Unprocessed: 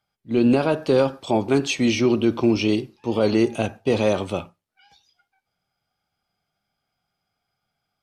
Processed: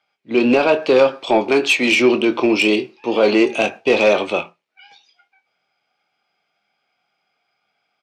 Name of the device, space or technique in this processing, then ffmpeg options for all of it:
intercom: -filter_complex "[0:a]asettb=1/sr,asplit=3[s0][s1][s2];[s0]atrim=end=3.474[s3];[s1]atrim=start=3.47:end=3.92,asetpts=PTS-STARTPTS,afade=t=in:d=0.004:c=qsin,afade=t=out:st=0.446:d=0.004:c=qsin,highshelf=f=5600:g=6[s4];[s2]atrim=start=3.916[s5];[s3][s4]acrossfade=d=0.004:c1=hsin:c2=qsin[s6];[s6][s5]acrossfade=d=0.004:c1=qsin:c2=hsin,highpass=340,lowpass=4800,equalizer=f=2400:t=o:w=0.58:g=12,asoftclip=type=tanh:threshold=0.266,asplit=2[s7][s8];[s8]adelay=24,volume=0.316[s9];[s7][s9]amix=inputs=2:normalize=0,asettb=1/sr,asplit=3[s10][s11][s12];[s10]atrim=end=1.514[s13];[s11]atrim=start=1.51:end=1.92,asetpts=PTS-STARTPTS,afade=t=in:d=0.004:c=qsin,afade=t=out:st=0.406:d=0.004:c=qsin,highpass=f=190:p=1[s14];[s12]atrim=start=1.916[s15];[s13][s14]acrossfade=d=0.004:c1=hsin:c2=qsin[s16];[s16][s15]acrossfade=d=0.004:c1=qsin:c2=hsin,equalizer=f=2300:t=o:w=1.2:g=-4.5,volume=2.51"

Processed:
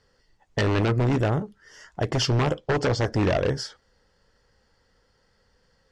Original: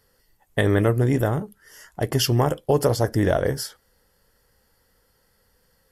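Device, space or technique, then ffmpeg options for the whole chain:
synthesiser wavefolder: -filter_complex "[0:a]asettb=1/sr,asplit=3[s0][s1][s2];[s0]atrim=end=2.574[s3];[s1]atrim=start=2.57:end=3.02,asetpts=PTS-STARTPTS,afade=t=in:d=0.004:c=qsin,afade=t=out:st=0.446:d=0.004:c=qsin,lowpass=f=8400:w=0.5412,lowpass=f=8400:w=1.3066[s4];[s2]atrim=start=3.016[s5];[s3][s4]acrossfade=d=0.004:c1=hsin:c2=qsin[s6];[s6][s5]acrossfade=d=0.004:c1=qsin:c2=hsin,aeval=exprs='0.158*(abs(mod(val(0)/0.158+3,4)-2)-1)':c=same,lowpass=f=6400:w=0.5412,lowpass=f=6400:w=1.3066"

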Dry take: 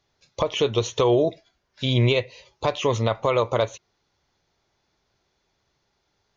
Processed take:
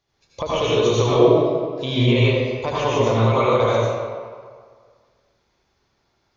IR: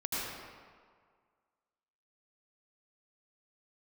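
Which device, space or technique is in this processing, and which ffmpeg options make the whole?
stairwell: -filter_complex "[1:a]atrim=start_sample=2205[s0];[0:a][s0]afir=irnorm=-1:irlink=0,asettb=1/sr,asplit=3[s1][s2][s3];[s1]atrim=end=2.064[s4];[s2]atrim=start=2.06:end=3.22,asetpts=PTS-STARTPTS,afade=t=in:d=0.004:c=qsin,afade=t=out:st=1.156:d=0.004:c=qsin,bandreject=f=3900:w=11[s5];[s3]atrim=start=3.216[s6];[s4][s5]acrossfade=d=0.004:c1=hsin:c2=qsin[s7];[s7][s6]acrossfade=d=0.004:c1=qsin:c2=hsin,volume=0.891"

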